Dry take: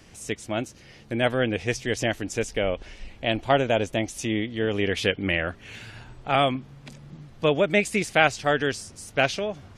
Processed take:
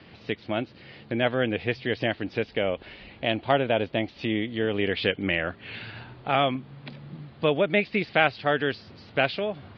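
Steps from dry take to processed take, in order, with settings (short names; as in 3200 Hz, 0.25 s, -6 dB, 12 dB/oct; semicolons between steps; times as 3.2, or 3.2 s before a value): steep low-pass 4600 Hz 72 dB/oct; in parallel at +1.5 dB: compressor, threshold -32 dBFS, peak gain reduction 17.5 dB; on the sum: HPF 100 Hz 12 dB/oct; gain -3.5 dB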